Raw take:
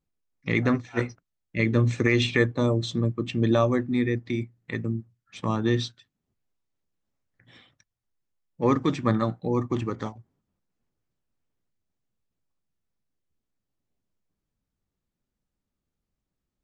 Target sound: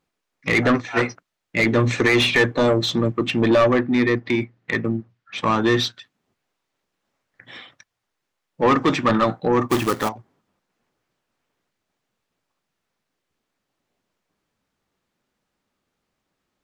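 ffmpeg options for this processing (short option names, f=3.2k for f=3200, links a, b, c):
-filter_complex "[0:a]asettb=1/sr,asplit=3[a][b][c];[a]atrim=end=3.414[d];[b]atrim=start=3.41:end=5.38,asetpts=PTS-STARTPTS,afade=t=in:d=0.004:c=qsin,afade=t=out:st=1.966:d=0.004:c=qsin,lowpass=4.6k[e];[c]atrim=start=5.376[f];[d][e]acrossfade=d=0.004:c1=hsin:c2=qsin[g];[g][f]acrossfade=d=0.004:c1=qsin:c2=hsin,asplit=2[h][i];[i]highpass=f=720:p=1,volume=23dB,asoftclip=type=tanh:threshold=-7dB[j];[h][j]amix=inputs=2:normalize=0,lowpass=f=2.8k:p=1,volume=-6dB,asettb=1/sr,asplit=3[k][l][m];[k]atrim=end=9.694[n];[l]atrim=start=9.69:end=10.09,asetpts=PTS-STARTPTS,afade=t=in:d=0.004:c=qsin,afade=t=out:st=0.396:d=0.004:c=qsin,acrusher=bits=2:mode=log:mix=0:aa=0.000001[o];[m]atrim=start=10.086[p];[n][o]acrossfade=d=0.004:c1=hsin:c2=qsin[q];[q][p]acrossfade=d=0.004:c1=qsin:c2=hsin"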